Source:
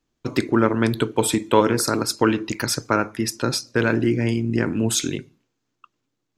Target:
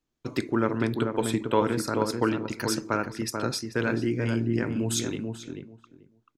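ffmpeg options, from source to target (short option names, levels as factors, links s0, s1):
-filter_complex "[0:a]asettb=1/sr,asplit=3[s0][s1][s2];[s0]atrim=end=0.784[s3];[s1]atrim=start=0.78:end=2.52,asetpts=PTS-STARTPTS,afade=t=in:d=0.004:c=qsin,afade=t=out:st=1.736:d=0.004:c=qsin,bass=f=250:g=0,treble=f=4000:g=-6[s4];[s2]atrim=start=2.516[s5];[s3][s4]acrossfade=d=0.004:c1=hsin:c2=qsin[s6];[s6][s5]acrossfade=d=0.004:c1=qsin:c2=hsin,asplit=2[s7][s8];[s8]adelay=437,lowpass=f=1400:p=1,volume=0.596,asplit=2[s9][s10];[s10]adelay=437,lowpass=f=1400:p=1,volume=0.17,asplit=2[s11][s12];[s12]adelay=437,lowpass=f=1400:p=1,volume=0.17[s13];[s7][s9][s11][s13]amix=inputs=4:normalize=0,volume=0.447"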